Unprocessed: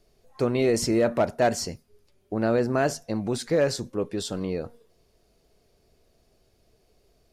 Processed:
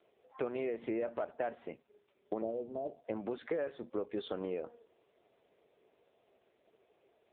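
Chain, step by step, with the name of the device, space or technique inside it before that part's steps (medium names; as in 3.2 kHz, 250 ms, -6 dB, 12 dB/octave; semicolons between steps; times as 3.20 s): 2.42–3.05 s: inverse Chebyshev low-pass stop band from 1.4 kHz, stop band 40 dB; voicemail (band-pass 370–3200 Hz; compression 8:1, threshold -35 dBFS, peak gain reduction 17 dB; trim +2.5 dB; AMR-NB 5.9 kbps 8 kHz)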